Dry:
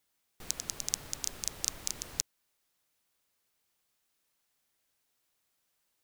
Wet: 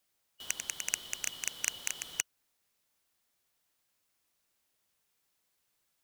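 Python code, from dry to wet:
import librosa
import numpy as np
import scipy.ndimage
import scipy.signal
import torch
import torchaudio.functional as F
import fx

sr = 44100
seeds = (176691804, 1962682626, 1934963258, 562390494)

y = fx.band_shuffle(x, sr, order='2413')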